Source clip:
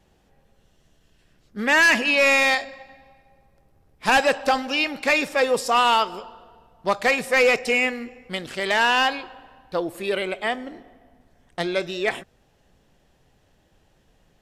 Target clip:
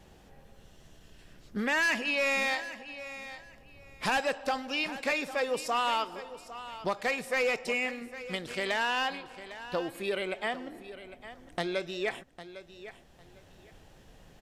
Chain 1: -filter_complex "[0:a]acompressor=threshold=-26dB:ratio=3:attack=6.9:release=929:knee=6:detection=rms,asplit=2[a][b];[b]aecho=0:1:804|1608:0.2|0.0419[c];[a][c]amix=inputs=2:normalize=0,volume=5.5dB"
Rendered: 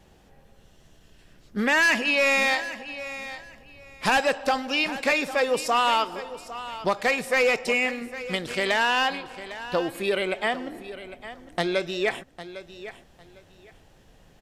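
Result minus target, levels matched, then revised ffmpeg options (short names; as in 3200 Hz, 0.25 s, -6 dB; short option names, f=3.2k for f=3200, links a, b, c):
compressor: peak gain reduction -7 dB
-filter_complex "[0:a]acompressor=threshold=-36.5dB:ratio=3:attack=6.9:release=929:knee=6:detection=rms,asplit=2[a][b];[b]aecho=0:1:804|1608:0.2|0.0419[c];[a][c]amix=inputs=2:normalize=0,volume=5.5dB"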